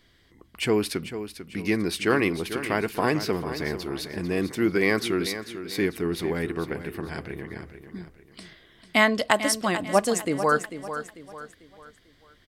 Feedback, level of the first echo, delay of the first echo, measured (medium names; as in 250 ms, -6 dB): 39%, -11.0 dB, 445 ms